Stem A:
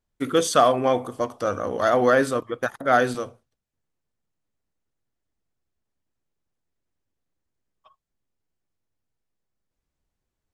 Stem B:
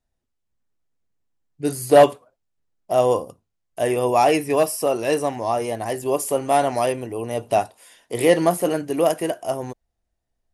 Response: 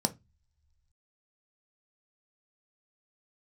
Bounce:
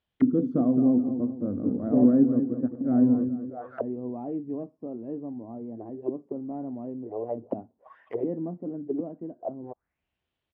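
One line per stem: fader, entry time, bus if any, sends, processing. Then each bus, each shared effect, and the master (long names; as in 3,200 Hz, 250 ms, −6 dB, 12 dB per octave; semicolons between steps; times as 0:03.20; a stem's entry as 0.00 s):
−2.0 dB, 0.00 s, no send, echo send −9 dB, no processing
−15.0 dB, 0.00 s, no send, no echo send, parametric band 1,100 Hz +9 dB 2.6 octaves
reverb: not used
echo: repeating echo 212 ms, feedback 39%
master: high-pass filter 60 Hz; envelope-controlled low-pass 250–3,200 Hz down, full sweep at −30.5 dBFS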